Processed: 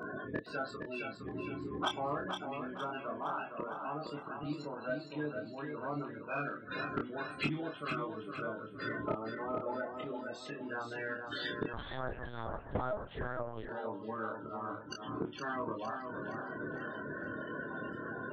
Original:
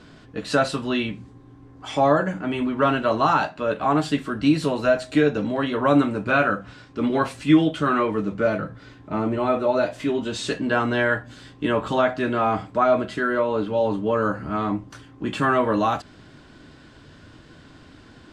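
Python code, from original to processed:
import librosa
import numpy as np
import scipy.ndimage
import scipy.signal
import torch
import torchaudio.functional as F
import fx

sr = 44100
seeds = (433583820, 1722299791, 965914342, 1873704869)

p1 = fx.spec_quant(x, sr, step_db=30)
p2 = scipy.signal.sosfilt(scipy.signal.butter(2, 91.0, 'highpass', fs=sr, output='sos'), p1)
p3 = fx.low_shelf(p2, sr, hz=180.0, db=-9.5)
p4 = fx.rider(p3, sr, range_db=4, speed_s=2.0)
p5 = fx.gate_flip(p4, sr, shuts_db=-26.0, range_db=-27)
p6 = fx.spec_topn(p5, sr, count=32)
p7 = 10.0 ** (-34.0 / 20.0) * np.tanh(p6 / 10.0 ** (-34.0 / 20.0))
p8 = fx.doubler(p7, sr, ms=27.0, db=-4.0)
p9 = p8 + fx.echo_feedback(p8, sr, ms=463, feedback_pct=40, wet_db=-6.0, dry=0)
p10 = fx.lpc_vocoder(p9, sr, seeds[0], excitation='pitch_kept', order=8, at=(11.73, 13.69))
y = p10 * 10.0 ** (8.5 / 20.0)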